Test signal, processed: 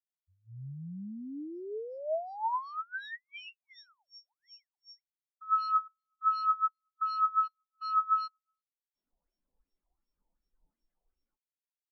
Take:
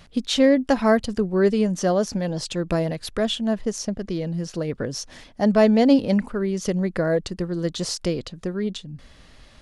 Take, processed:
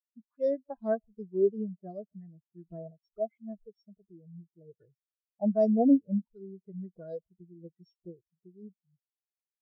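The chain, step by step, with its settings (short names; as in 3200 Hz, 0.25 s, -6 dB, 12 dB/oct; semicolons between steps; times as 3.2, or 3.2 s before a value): sample sorter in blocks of 8 samples; speakerphone echo 0.13 s, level -27 dB; LFO low-pass sine 2.7 Hz 800–4000 Hz; spectral noise reduction 13 dB; spectral expander 2.5:1; gain -7.5 dB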